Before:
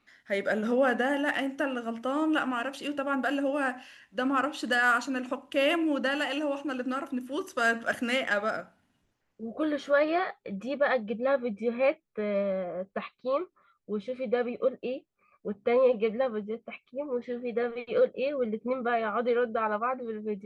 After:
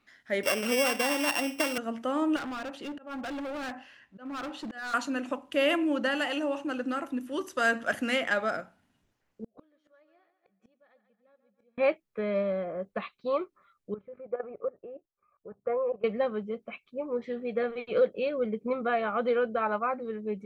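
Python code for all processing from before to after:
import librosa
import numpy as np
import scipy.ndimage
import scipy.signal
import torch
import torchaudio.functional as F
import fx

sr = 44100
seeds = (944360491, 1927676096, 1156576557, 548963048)

y = fx.chain(x, sr, fx.sample_sort(block=16),
    fx.peak_eq(hz=170.0, db=-10.0, octaves=0.82),
    fx.band_squash(depth_pct=70), at=(0.43, 1.78))
y = fx.chain(y, sr, fx.lowpass(hz=2300.0, slope=6),
    fx.auto_swell(attack_ms=331.0),
    fx.overload_stage(gain_db=34.0), at=(2.36, 4.94))
y = fx.chain(y, sr, fx.echo_feedback(ms=140, feedback_pct=41, wet_db=-10.5),
    fx.gate_flip(shuts_db=-29.0, range_db=-39), at=(9.44, 11.78))
y = fx.chain(y, sr, fx.lowpass(hz=1500.0, slope=24),
    fx.peak_eq(hz=230.0, db=-11.5, octaves=1.0),
    fx.level_steps(step_db=14), at=(13.94, 16.04))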